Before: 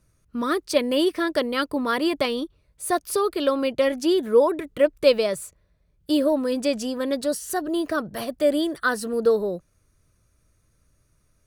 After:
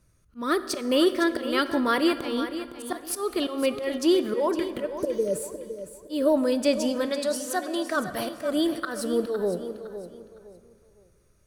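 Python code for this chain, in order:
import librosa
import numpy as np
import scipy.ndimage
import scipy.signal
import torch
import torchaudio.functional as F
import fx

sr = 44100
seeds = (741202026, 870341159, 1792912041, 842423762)

y = fx.spec_repair(x, sr, seeds[0], start_s=5.01, length_s=0.36, low_hz=610.0, high_hz=6700.0, source='after')
y = fx.auto_swell(y, sr, attack_ms=181.0)
y = fx.weighting(y, sr, curve='A', at=(7.06, 7.96), fade=0.02)
y = fx.echo_feedback(y, sr, ms=510, feedback_pct=29, wet_db=-11.5)
y = fx.rev_plate(y, sr, seeds[1], rt60_s=2.3, hf_ratio=0.55, predelay_ms=0, drr_db=11.5)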